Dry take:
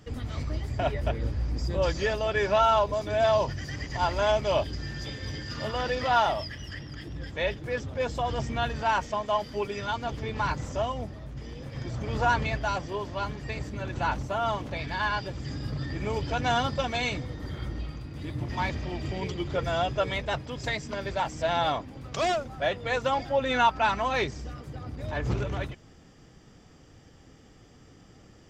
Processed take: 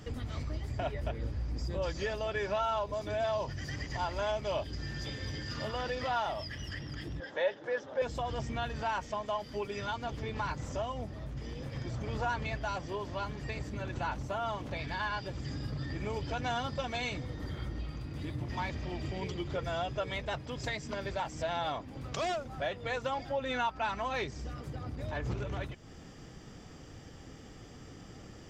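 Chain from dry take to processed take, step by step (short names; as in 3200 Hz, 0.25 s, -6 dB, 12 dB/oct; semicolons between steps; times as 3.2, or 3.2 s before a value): compressor 2:1, threshold -45 dBFS, peak gain reduction 15 dB; 7.2–8.02 speaker cabinet 340–6000 Hz, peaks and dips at 560 Hz +8 dB, 870 Hz +6 dB, 1600 Hz +6 dB, 2400 Hz -6 dB, 4600 Hz -5 dB; gain +4 dB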